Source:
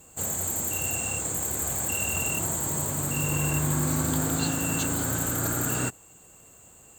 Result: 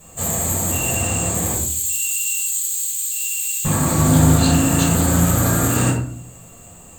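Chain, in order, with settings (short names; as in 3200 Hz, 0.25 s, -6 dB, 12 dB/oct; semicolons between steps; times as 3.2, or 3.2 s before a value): 1.54–3.65 inverse Chebyshev high-pass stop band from 1200 Hz, stop band 50 dB; shoebox room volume 570 m³, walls furnished, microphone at 6 m; Doppler distortion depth 0.12 ms; gain +2 dB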